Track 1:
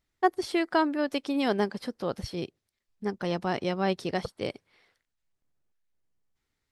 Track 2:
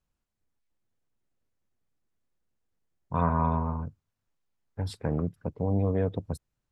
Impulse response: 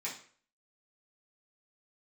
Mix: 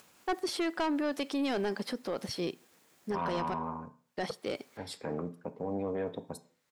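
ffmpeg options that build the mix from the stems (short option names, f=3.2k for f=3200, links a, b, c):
-filter_complex "[0:a]adelay=50,volume=2.5dB,asplit=3[a][b][c];[a]atrim=end=3.54,asetpts=PTS-STARTPTS,afade=t=out:st=3.536:d=0.004:c=hsin[d];[b]atrim=start=3.54:end=4.17,asetpts=PTS-STARTPTS,volume=0[e];[c]atrim=start=4.17,asetpts=PTS-STARTPTS,afade=t=in:d=0.004:c=hsin[f];[d][e][f]concat=n=3:v=0:a=1,asplit=2[g][h];[h]volume=-22.5dB[i];[1:a]lowshelf=f=400:g=-5.5,acompressor=mode=upward:threshold=-36dB:ratio=2.5,volume=-1dB,asplit=2[j][k];[k]volume=-9.5dB[l];[2:a]atrim=start_sample=2205[m];[i][l]amix=inputs=2:normalize=0[n];[n][m]afir=irnorm=-1:irlink=0[o];[g][j][o]amix=inputs=3:normalize=0,highpass=200,asoftclip=type=tanh:threshold=-20dB,alimiter=level_in=1.5dB:limit=-24dB:level=0:latency=1:release=22,volume=-1.5dB"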